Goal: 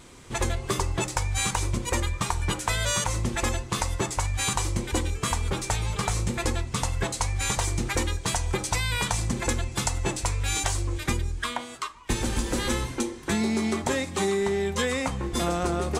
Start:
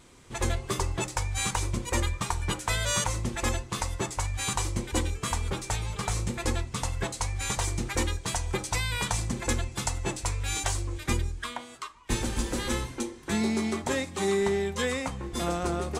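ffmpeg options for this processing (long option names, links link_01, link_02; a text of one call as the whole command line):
ffmpeg -i in.wav -af "acompressor=threshold=-28dB:ratio=6,volume=6dB" out.wav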